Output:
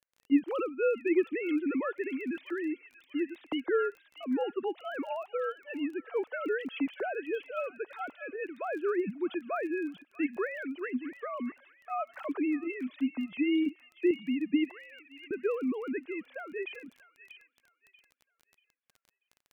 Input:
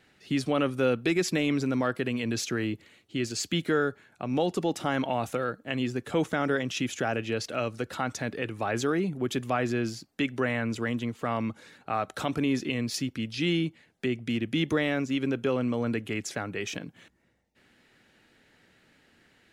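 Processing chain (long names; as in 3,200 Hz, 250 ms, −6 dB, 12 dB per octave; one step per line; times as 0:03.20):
three sine waves on the formant tracks
noise gate −51 dBFS, range −25 dB
0:13.66–0:14.11: hollow resonant body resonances 290/2,800 Hz, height 13 dB, ringing for 45 ms
0:14.71–0:15.31: first difference
on a send: delay with a high-pass on its return 637 ms, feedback 30%, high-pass 2,600 Hz, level −6 dB
on the sum: surface crackle 18 per second −41 dBFS
level −3.5 dB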